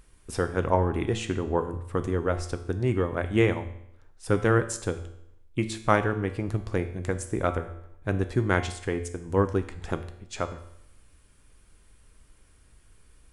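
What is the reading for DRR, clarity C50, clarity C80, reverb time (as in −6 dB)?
8.0 dB, 12.0 dB, 14.5 dB, 0.75 s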